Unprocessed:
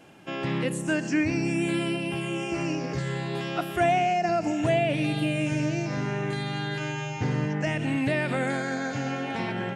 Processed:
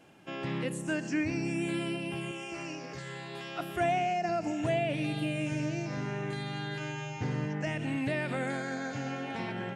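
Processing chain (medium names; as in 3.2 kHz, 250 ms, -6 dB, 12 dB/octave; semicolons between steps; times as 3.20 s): 2.31–3.60 s: bass shelf 450 Hz -9.5 dB; trim -6 dB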